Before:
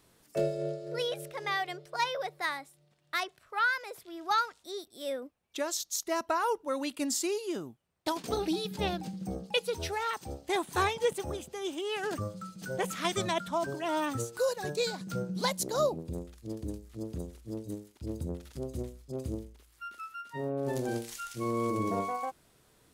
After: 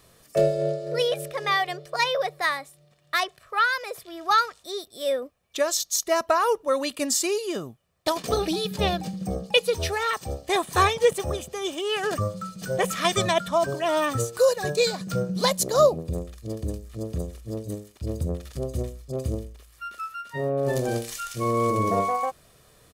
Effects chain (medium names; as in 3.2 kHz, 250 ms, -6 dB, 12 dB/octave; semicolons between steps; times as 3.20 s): comb 1.7 ms, depth 43%; trim +7.5 dB